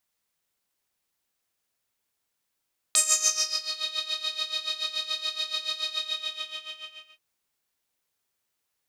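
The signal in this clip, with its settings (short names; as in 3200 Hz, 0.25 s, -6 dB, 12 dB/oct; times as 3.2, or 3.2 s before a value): synth patch with tremolo D#5, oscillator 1 saw, interval +12 st, oscillator 2 level -5 dB, sub -14.5 dB, filter bandpass, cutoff 2900 Hz, Q 6.9, filter envelope 1.5 oct, filter decay 0.89 s, filter sustain 30%, attack 1.1 ms, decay 0.65 s, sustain -14 dB, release 1.29 s, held 2.95 s, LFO 7 Hz, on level 13.5 dB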